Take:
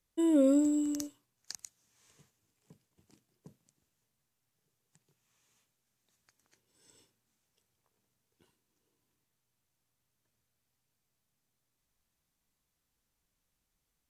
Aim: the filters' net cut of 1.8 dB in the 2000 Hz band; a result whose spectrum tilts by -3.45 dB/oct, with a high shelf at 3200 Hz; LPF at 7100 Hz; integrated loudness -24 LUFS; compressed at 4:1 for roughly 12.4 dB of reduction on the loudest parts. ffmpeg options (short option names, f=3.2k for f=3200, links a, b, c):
-af "lowpass=7.1k,equalizer=f=2k:t=o:g=-5,highshelf=f=3.2k:g=8,acompressor=threshold=-37dB:ratio=4,volume=16dB"